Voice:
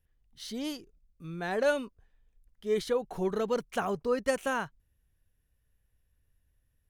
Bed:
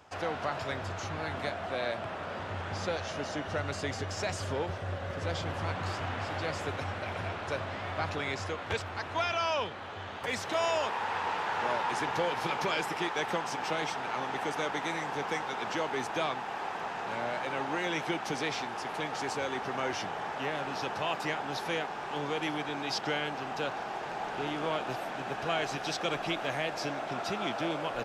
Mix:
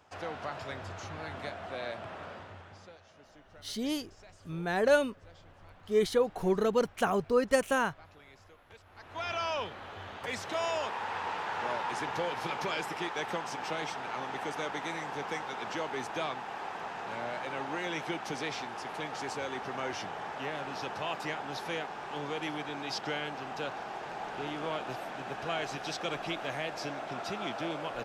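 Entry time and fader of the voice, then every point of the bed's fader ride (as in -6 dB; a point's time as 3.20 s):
3.25 s, +2.5 dB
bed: 2.25 s -5 dB
3.01 s -22 dB
8.81 s -22 dB
9.31 s -3 dB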